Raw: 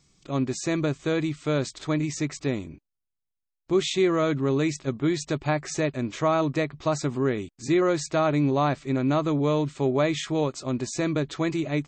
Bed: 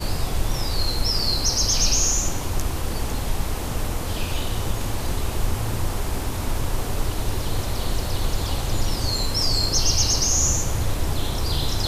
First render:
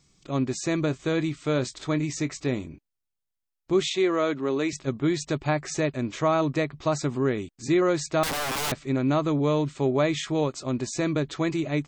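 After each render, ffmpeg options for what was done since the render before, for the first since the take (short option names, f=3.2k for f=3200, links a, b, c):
-filter_complex "[0:a]asettb=1/sr,asplit=3[a][b][c];[a]atrim=end=0.864[d];[b]atrim=start=0.86:end=2.66,asetpts=PTS-STARTPTS,afade=t=in:d=0.004:c=qsin,afade=t=out:st=1.796:d=0.004:c=qsin,asplit=2[e][f];[f]adelay=24,volume=-14dB[g];[e][g]amix=inputs=2:normalize=0,atrim=end_sample=79380[h];[c]atrim=start=2.656[i];[d][h]acrossfade=d=0.004:c1=hsin:c2=qsin[j];[j][i]acrossfade=d=0.004:c1=qsin:c2=hsin,asettb=1/sr,asplit=3[k][l][m];[k]atrim=end=3.894[n];[l]atrim=start=3.89:end=4.73,asetpts=PTS-STARTPTS,afade=t=in:d=0.004:c=qsin,afade=t=out:st=0.836:d=0.004:c=qsin,highpass=280,lowpass=7.1k[o];[m]atrim=start=4.726[p];[n][o]acrossfade=d=0.004:c1=hsin:c2=qsin[q];[q][p]acrossfade=d=0.004:c1=qsin:c2=hsin,asettb=1/sr,asplit=3[r][s][t];[r]atrim=end=8.234[u];[s]atrim=start=8.23:end=8.72,asetpts=PTS-STARTPTS,afade=t=in:d=0.004:c=qsin,afade=t=out:st=0.486:d=0.004:c=qsin,aeval=exprs='(mod(15*val(0)+1,2)-1)/15':c=same[v];[t]atrim=start=8.716[w];[u][v]acrossfade=d=0.004:c1=hsin:c2=qsin[x];[x][w]acrossfade=d=0.004:c1=qsin:c2=hsin"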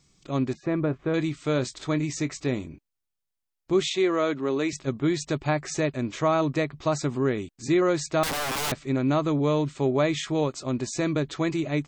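-filter_complex "[0:a]asettb=1/sr,asplit=3[a][b][c];[a]atrim=end=0.534[d];[b]atrim=start=0.53:end=1.14,asetpts=PTS-STARTPTS,afade=t=in:d=0.004:c=qsin,afade=t=out:st=0.606:d=0.004:c=qsin,lowpass=1.6k[e];[c]atrim=start=1.136[f];[d][e]acrossfade=d=0.004:c1=hsin:c2=qsin[g];[g][f]acrossfade=d=0.004:c1=qsin:c2=hsin"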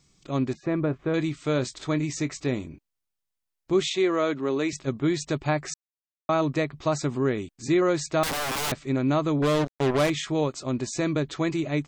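-filter_complex "[0:a]asettb=1/sr,asplit=3[a][b][c];[a]atrim=end=9.424[d];[b]atrim=start=9.42:end=10.1,asetpts=PTS-STARTPTS,afade=t=in:d=0.004:c=qsin,afade=t=out:st=0.676:d=0.004:c=qsin,acrusher=bits=3:mix=0:aa=0.5[e];[c]atrim=start=10.096[f];[d][e]acrossfade=d=0.004:c1=hsin:c2=qsin[g];[g][f]acrossfade=d=0.004:c1=qsin:c2=hsin,asplit=3[h][i][j];[h]atrim=end=5.74,asetpts=PTS-STARTPTS,afade=t=out:st=5.736:d=0.004:c=hsin[k];[i]atrim=start=5.74:end=6.29,asetpts=PTS-STARTPTS,volume=0[l];[j]atrim=start=6.29,asetpts=PTS-STARTPTS,afade=t=in:d=0.004:c=hsin[m];[k][l][m]concat=n=3:v=0:a=1"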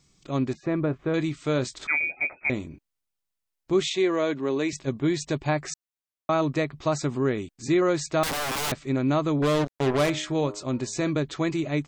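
-filter_complex "[0:a]asettb=1/sr,asplit=3[a][b][c];[a]atrim=end=1.874[d];[b]atrim=start=1.87:end=2.5,asetpts=PTS-STARTPTS,afade=t=in:d=0.004:c=qsin,afade=t=out:st=0.626:d=0.004:c=qsin,lowpass=f=2.2k:t=q:w=0.5098,lowpass=f=2.2k:t=q:w=0.6013,lowpass=f=2.2k:t=q:w=0.9,lowpass=f=2.2k:t=q:w=2.563,afreqshift=-2600[e];[c]atrim=start=2.496[f];[d][e]acrossfade=d=0.004:c1=hsin:c2=qsin[g];[g][f]acrossfade=d=0.004:c1=qsin:c2=hsin,asettb=1/sr,asplit=3[h][i][j];[h]atrim=end=3.934[k];[i]atrim=start=3.93:end=5.53,asetpts=PTS-STARTPTS,afade=t=in:d=0.004:c=qsin,afade=t=out:st=1.596:d=0.004:c=qsin,bandreject=f=1.3k:w=8.5[l];[j]atrim=start=5.526[m];[k][l]acrossfade=d=0.004:c1=hsin:c2=qsin[n];[n][m]acrossfade=d=0.004:c1=qsin:c2=hsin,asettb=1/sr,asplit=3[o][p][q];[o]atrim=end=9.814[r];[p]atrim=start=9.81:end=11.1,asetpts=PTS-STARTPTS,afade=t=in:d=0.004:c=qsin,afade=t=out:st=1.286:d=0.004:c=qsin,bandreject=f=102.7:t=h:w=4,bandreject=f=205.4:t=h:w=4,bandreject=f=308.1:t=h:w=4,bandreject=f=410.8:t=h:w=4,bandreject=f=513.5:t=h:w=4,bandreject=f=616.2:t=h:w=4,bandreject=f=718.9:t=h:w=4,bandreject=f=821.6:t=h:w=4,bandreject=f=924.3:t=h:w=4,bandreject=f=1.027k:t=h:w=4,bandreject=f=1.1297k:t=h:w=4,bandreject=f=1.2324k:t=h:w=4,bandreject=f=1.3351k:t=h:w=4,bandreject=f=1.4378k:t=h:w=4,bandreject=f=1.5405k:t=h:w=4,bandreject=f=1.6432k:t=h:w=4,bandreject=f=1.7459k:t=h:w=4,bandreject=f=1.8486k:t=h:w=4[s];[q]atrim=start=11.096[t];[r][s]acrossfade=d=0.004:c1=hsin:c2=qsin[u];[u][t]acrossfade=d=0.004:c1=qsin:c2=hsin"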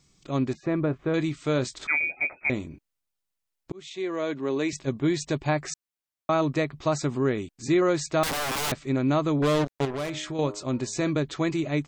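-filter_complex "[0:a]asettb=1/sr,asplit=3[a][b][c];[a]atrim=end=9.854[d];[b]atrim=start=9.85:end=10.39,asetpts=PTS-STARTPTS,afade=t=in:d=0.004:c=qsin,afade=t=out:st=0.536:d=0.004:c=qsin,acompressor=threshold=-30dB:ratio=3:attack=3.2:release=140:knee=1:detection=peak[e];[c]atrim=start=10.386[f];[d][e]acrossfade=d=0.004:c1=hsin:c2=qsin[g];[g][f]acrossfade=d=0.004:c1=qsin:c2=hsin,asplit=2[h][i];[h]atrim=end=3.72,asetpts=PTS-STARTPTS,afade=t=out:st=3.716:d=0.004:c=hsin[j];[i]atrim=start=3.72,asetpts=PTS-STARTPTS,afade=t=in:d=1.16:c=qsin[k];[j][k]concat=n=2:v=0:a=1"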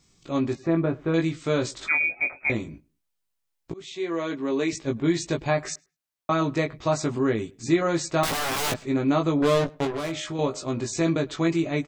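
-filter_complex "[0:a]asplit=2[a][b];[b]adelay=18,volume=-3.5dB[c];[a][c]amix=inputs=2:normalize=0,asplit=2[d][e];[e]adelay=104,lowpass=f=2.4k:p=1,volume=-24dB,asplit=2[f][g];[g]adelay=104,lowpass=f=2.4k:p=1,volume=0.23[h];[d][f][h]amix=inputs=3:normalize=0"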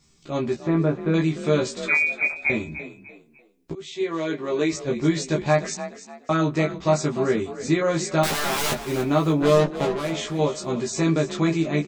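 -filter_complex "[0:a]asplit=2[a][b];[b]adelay=13,volume=-2.5dB[c];[a][c]amix=inputs=2:normalize=0,asplit=4[d][e][f][g];[e]adelay=297,afreqshift=36,volume=-13dB[h];[f]adelay=594,afreqshift=72,volume=-22.9dB[i];[g]adelay=891,afreqshift=108,volume=-32.8dB[j];[d][h][i][j]amix=inputs=4:normalize=0"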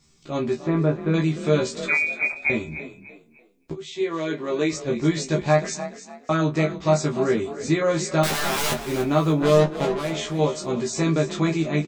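-filter_complex "[0:a]asplit=2[a][b];[b]adelay=26,volume=-12dB[c];[a][c]amix=inputs=2:normalize=0,aecho=1:1:265:0.075"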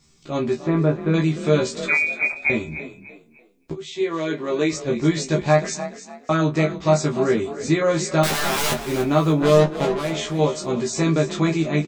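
-af "volume=2dB"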